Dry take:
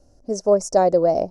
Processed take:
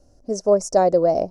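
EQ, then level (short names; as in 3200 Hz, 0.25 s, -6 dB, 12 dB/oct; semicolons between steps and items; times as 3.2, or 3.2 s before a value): notch 860 Hz, Q 21; 0.0 dB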